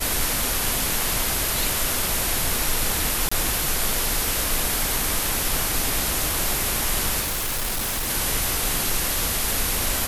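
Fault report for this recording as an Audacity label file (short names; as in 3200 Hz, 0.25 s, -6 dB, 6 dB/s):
3.290000	3.310000	gap 25 ms
7.200000	8.100000	clipped -22.5 dBFS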